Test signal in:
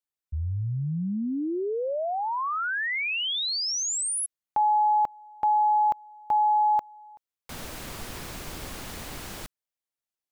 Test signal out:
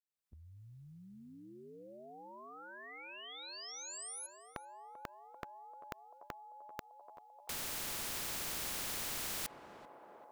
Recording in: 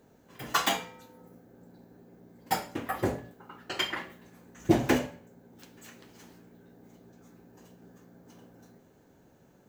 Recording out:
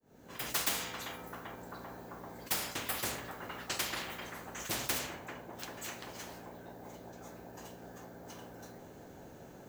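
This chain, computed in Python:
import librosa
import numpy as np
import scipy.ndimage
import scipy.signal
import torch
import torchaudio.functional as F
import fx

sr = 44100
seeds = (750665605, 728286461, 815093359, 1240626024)

p1 = fx.fade_in_head(x, sr, length_s=0.7)
p2 = p1 + fx.echo_banded(p1, sr, ms=391, feedback_pct=83, hz=670.0, wet_db=-19.5, dry=0)
p3 = fx.rider(p2, sr, range_db=3, speed_s=2.0)
p4 = fx.spectral_comp(p3, sr, ratio=4.0)
y = p4 * librosa.db_to_amplitude(-7.5)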